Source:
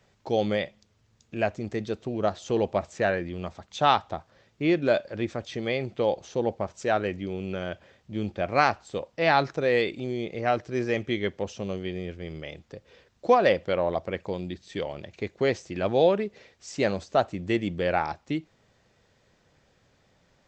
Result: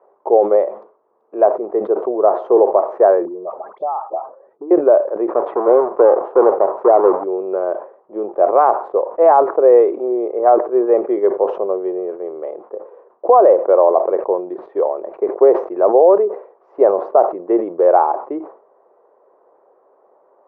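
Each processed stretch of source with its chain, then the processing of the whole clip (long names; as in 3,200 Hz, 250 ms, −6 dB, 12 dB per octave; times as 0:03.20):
0:03.25–0:04.71: expanding power law on the bin magnitudes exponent 1.7 + all-pass dispersion highs, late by 66 ms, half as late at 1,200 Hz + downward compressor 12 to 1, threshold −32 dBFS
0:05.29–0:07.24: each half-wave held at its own peak + high-shelf EQ 3,400 Hz −10.5 dB
whole clip: Chebyshev band-pass filter 380–1,100 Hz, order 3; boost into a limiter +17 dB; level that may fall only so fast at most 130 dB per second; level −1 dB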